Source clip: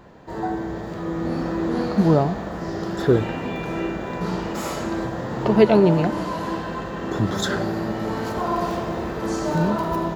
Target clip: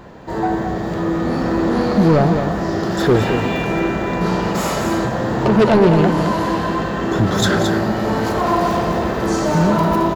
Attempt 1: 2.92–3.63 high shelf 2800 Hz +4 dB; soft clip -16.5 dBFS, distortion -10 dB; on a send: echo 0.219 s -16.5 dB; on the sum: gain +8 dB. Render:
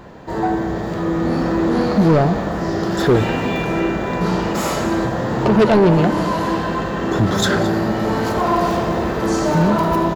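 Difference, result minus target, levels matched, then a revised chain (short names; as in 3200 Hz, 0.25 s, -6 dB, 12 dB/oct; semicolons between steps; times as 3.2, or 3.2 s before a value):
echo-to-direct -9.5 dB
2.92–3.63 high shelf 2800 Hz +4 dB; soft clip -16.5 dBFS, distortion -10 dB; on a send: echo 0.219 s -7 dB; on the sum: gain +8 dB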